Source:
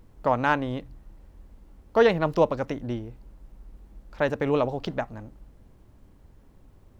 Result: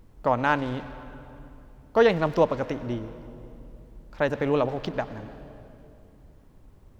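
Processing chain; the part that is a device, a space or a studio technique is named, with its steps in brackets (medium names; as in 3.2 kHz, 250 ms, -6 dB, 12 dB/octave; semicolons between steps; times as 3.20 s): saturated reverb return (on a send at -10 dB: reverberation RT60 2.4 s, pre-delay 89 ms + saturation -27 dBFS, distortion -7 dB)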